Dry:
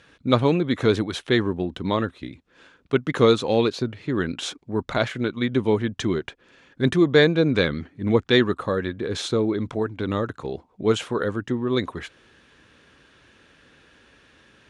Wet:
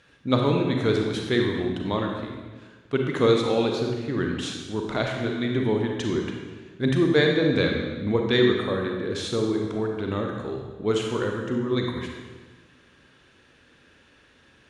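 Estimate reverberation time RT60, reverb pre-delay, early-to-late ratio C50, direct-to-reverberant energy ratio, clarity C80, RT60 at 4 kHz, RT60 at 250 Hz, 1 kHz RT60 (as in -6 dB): 1.4 s, 32 ms, 2.5 dB, 1.0 dB, 4.5 dB, 1.2 s, 1.5 s, 1.3 s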